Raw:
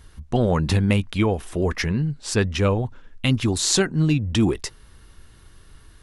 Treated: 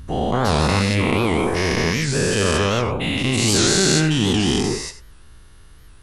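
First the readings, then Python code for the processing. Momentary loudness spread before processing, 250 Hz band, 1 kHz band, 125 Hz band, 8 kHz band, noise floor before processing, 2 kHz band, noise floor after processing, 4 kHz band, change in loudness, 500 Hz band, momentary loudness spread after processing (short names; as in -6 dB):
7 LU, +2.5 dB, +8.0 dB, +0.5 dB, +6.0 dB, -49 dBFS, +7.0 dB, -45 dBFS, +7.0 dB, +3.5 dB, +4.0 dB, 6 LU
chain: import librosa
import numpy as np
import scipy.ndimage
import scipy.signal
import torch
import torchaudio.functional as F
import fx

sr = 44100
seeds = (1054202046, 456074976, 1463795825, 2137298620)

y = fx.spec_dilate(x, sr, span_ms=480)
y = fx.rev_gated(y, sr, seeds[0], gate_ms=110, shape='rising', drr_db=11.5)
y = fx.record_warp(y, sr, rpm=78.0, depth_cents=160.0)
y = y * 10.0 ** (-5.0 / 20.0)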